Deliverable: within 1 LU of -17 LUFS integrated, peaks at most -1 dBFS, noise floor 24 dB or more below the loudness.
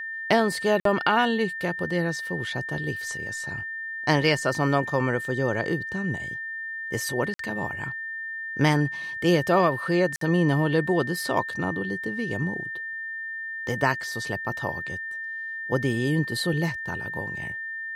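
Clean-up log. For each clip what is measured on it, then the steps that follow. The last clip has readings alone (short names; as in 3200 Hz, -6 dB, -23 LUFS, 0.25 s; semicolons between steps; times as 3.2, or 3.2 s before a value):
dropouts 3; longest dropout 53 ms; steady tone 1800 Hz; tone level -31 dBFS; loudness -26.0 LUFS; peak -7.5 dBFS; loudness target -17.0 LUFS
-> interpolate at 0.8/7.34/10.16, 53 ms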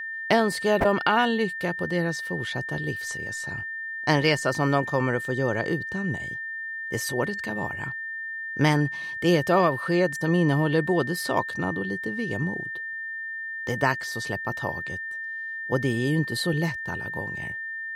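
dropouts 0; steady tone 1800 Hz; tone level -31 dBFS
-> notch 1800 Hz, Q 30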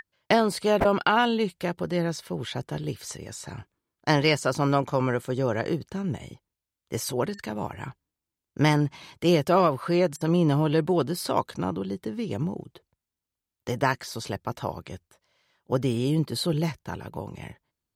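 steady tone none; loudness -26.0 LUFS; peak -8.0 dBFS; loudness target -17.0 LUFS
-> gain +9 dB; limiter -1 dBFS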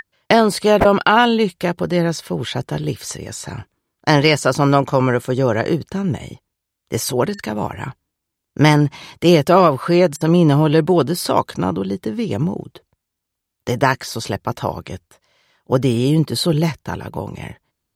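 loudness -17.5 LUFS; peak -1.0 dBFS; noise floor -80 dBFS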